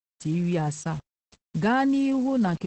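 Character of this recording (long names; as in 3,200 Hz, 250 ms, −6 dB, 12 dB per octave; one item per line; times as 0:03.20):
a quantiser's noise floor 8 bits, dither none
Opus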